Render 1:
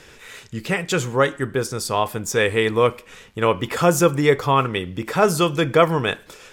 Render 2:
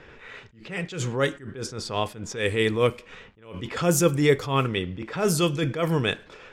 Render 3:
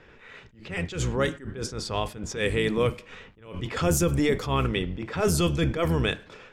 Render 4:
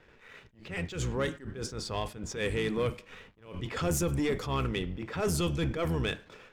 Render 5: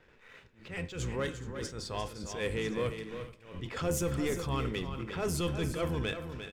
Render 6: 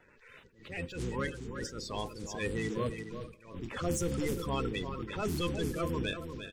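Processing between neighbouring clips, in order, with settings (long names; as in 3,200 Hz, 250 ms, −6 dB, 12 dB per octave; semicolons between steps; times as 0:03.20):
low-pass that shuts in the quiet parts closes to 2,200 Hz, open at −13 dBFS; dynamic equaliser 970 Hz, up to −8 dB, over −31 dBFS, Q 0.81; level that may rise only so fast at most 120 dB per second
sub-octave generator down 1 octave, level −3 dB; brickwall limiter −14 dBFS, peak gain reduction 7 dB; automatic gain control gain up to 5 dB; level −5 dB
leveller curve on the samples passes 1; level −8 dB
tuned comb filter 520 Hz, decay 0.48 s, mix 60%; multi-tap delay 349/421 ms −9/−16.5 dB; level +4.5 dB
spectral magnitudes quantised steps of 30 dB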